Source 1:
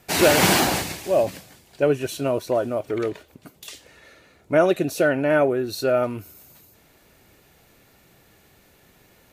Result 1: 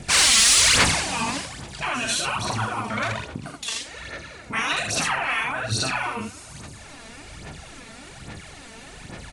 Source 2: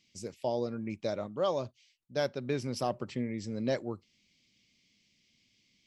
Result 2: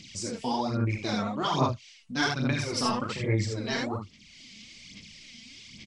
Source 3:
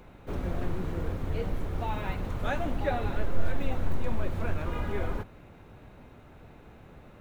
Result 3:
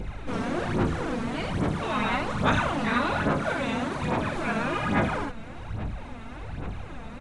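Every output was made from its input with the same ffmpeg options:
ffmpeg -i in.wav -filter_complex "[0:a]adynamicequalizer=threshold=0.01:dfrequency=1100:dqfactor=2.1:tfrequency=1100:tqfactor=2.1:attack=5:release=100:ratio=0.375:range=3:mode=boostabove:tftype=bell,afftfilt=real='re*lt(hypot(re,im),0.141)':imag='im*lt(hypot(re,im),0.141)':win_size=1024:overlap=0.75,equalizer=frequency=420:width_type=o:width=1:gain=-6,aecho=1:1:20|38|66|80:0.398|0.562|0.316|0.668,asplit=2[link_01][link_02];[link_02]acompressor=mode=upward:threshold=-36dB:ratio=2.5,volume=-2.5dB[link_03];[link_01][link_03]amix=inputs=2:normalize=0,asoftclip=type=hard:threshold=-11dB,aphaser=in_gain=1:out_gain=1:delay=4.5:decay=0.61:speed=1.2:type=sinusoidal,aresample=22050,aresample=44100,acontrast=64,volume=-5dB" out.wav

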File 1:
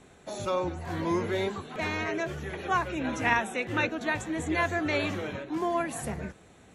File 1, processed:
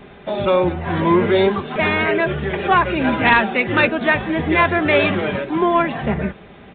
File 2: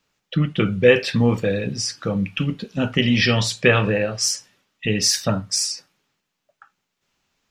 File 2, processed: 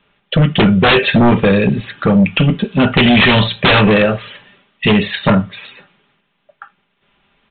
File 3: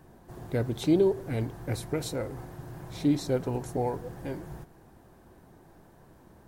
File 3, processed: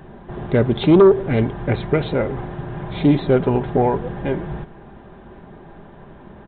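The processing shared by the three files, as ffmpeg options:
ffmpeg -i in.wav -af "aecho=1:1:5:0.36,aresample=8000,aeval=exprs='0.944*sin(PI/2*5.62*val(0)/0.944)':channel_layout=same,aresample=44100,volume=-5.5dB" out.wav

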